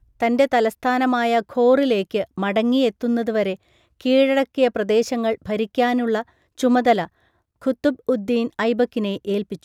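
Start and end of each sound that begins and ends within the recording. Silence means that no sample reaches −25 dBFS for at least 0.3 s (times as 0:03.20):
0:04.01–0:06.21
0:06.60–0:07.05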